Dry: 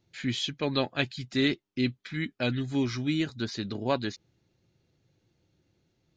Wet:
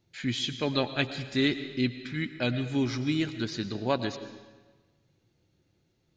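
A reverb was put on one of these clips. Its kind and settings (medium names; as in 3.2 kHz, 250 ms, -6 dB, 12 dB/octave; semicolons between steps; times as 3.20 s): algorithmic reverb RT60 1.3 s, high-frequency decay 0.9×, pre-delay 70 ms, DRR 10.5 dB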